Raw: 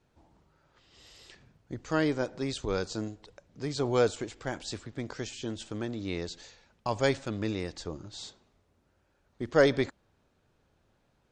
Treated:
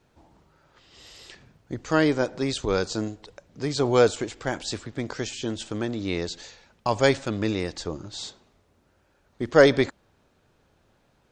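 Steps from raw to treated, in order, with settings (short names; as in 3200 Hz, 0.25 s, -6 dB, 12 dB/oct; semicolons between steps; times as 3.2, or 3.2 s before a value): low shelf 170 Hz -3 dB; gain +7 dB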